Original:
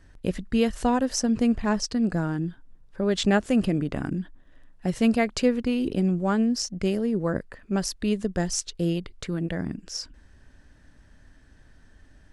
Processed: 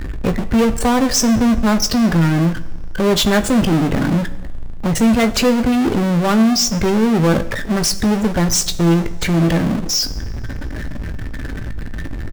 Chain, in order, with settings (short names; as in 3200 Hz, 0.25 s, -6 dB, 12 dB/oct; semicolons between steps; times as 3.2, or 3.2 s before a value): spectral gate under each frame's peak -20 dB strong; power-law curve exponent 0.35; doubler 18 ms -11 dB; two-slope reverb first 0.79 s, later 3 s, from -18 dB, DRR 12 dB; gain +2 dB